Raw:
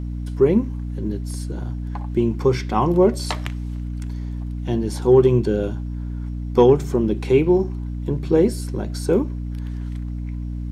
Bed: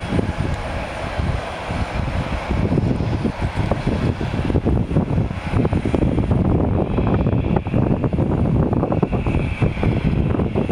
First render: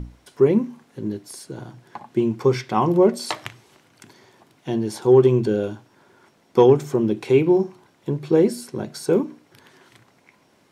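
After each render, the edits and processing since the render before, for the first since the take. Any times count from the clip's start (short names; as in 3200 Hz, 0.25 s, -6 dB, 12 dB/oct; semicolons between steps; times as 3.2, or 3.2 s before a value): notches 60/120/180/240/300 Hz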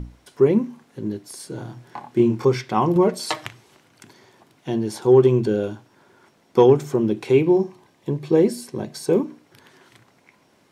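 1.37–2.45 doubler 25 ms -2 dB; 2.95–3.46 comb 6.4 ms; 7.35–9.23 Butterworth band-stop 1400 Hz, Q 7.2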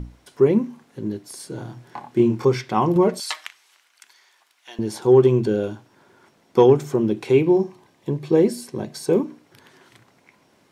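3.2–4.79 HPF 1400 Hz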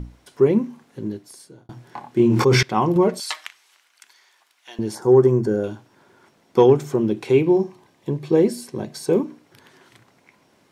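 1.01–1.69 fade out; 2.21–2.63 sustainer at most 23 dB/s; 4.95–5.64 band shelf 3100 Hz -14 dB 1 oct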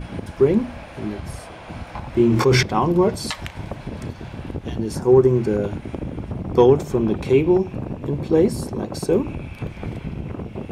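add bed -11.5 dB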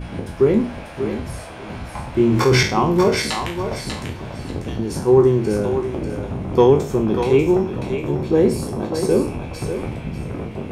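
spectral trails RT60 0.41 s; thinning echo 0.592 s, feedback 23%, high-pass 500 Hz, level -5.5 dB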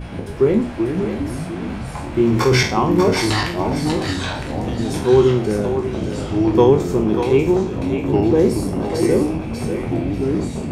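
pre-echo 0.135 s -22 dB; echoes that change speed 0.305 s, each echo -3 st, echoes 3, each echo -6 dB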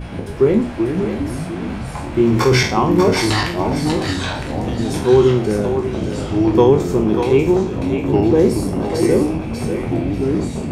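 gain +1.5 dB; limiter -3 dBFS, peak gain reduction 1.5 dB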